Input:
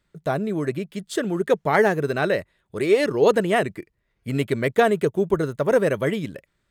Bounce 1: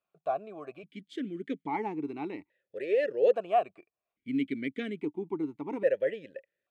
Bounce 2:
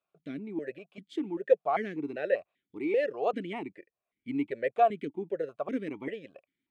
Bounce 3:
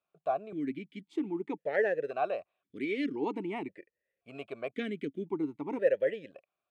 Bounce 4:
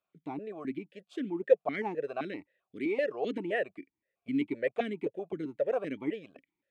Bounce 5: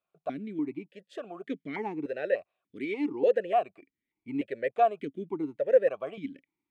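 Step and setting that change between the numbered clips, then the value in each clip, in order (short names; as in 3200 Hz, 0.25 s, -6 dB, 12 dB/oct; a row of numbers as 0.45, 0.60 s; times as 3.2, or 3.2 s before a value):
vowel sequencer, rate: 1.2, 5.1, 1.9, 7.7, 3.4 Hz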